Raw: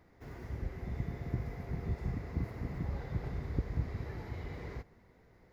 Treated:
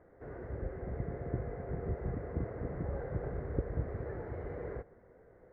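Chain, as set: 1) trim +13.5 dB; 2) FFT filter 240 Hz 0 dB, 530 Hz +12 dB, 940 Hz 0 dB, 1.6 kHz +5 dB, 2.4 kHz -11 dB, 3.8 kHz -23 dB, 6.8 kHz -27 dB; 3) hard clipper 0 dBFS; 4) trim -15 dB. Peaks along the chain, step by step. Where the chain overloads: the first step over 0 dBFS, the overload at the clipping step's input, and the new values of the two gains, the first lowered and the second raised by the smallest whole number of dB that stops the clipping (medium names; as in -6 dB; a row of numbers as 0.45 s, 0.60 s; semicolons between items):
-4.5 dBFS, -3.0 dBFS, -3.0 dBFS, -18.0 dBFS; nothing clips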